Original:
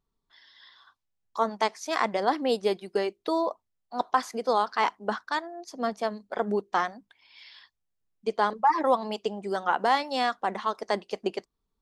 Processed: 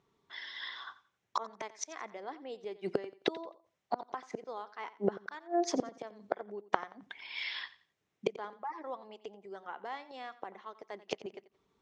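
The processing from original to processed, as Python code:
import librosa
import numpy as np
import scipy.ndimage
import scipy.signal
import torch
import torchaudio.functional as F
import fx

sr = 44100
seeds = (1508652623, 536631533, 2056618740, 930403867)

y = fx.gate_flip(x, sr, shuts_db=-28.0, range_db=-30)
y = fx.cabinet(y, sr, low_hz=130.0, low_slope=12, high_hz=6300.0, hz=(230.0, 390.0, 2100.0, 4600.0), db=(-4, 4, 4, -8))
y = fx.echo_feedback(y, sr, ms=88, feedback_pct=27, wet_db=-17.0)
y = y * librosa.db_to_amplitude(11.5)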